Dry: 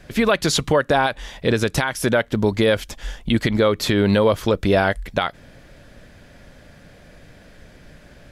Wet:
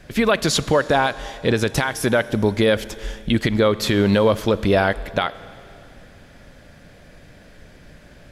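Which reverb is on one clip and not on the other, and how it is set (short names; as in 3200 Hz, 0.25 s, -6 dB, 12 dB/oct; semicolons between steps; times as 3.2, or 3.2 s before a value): Schroeder reverb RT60 2.8 s, combs from 29 ms, DRR 16.5 dB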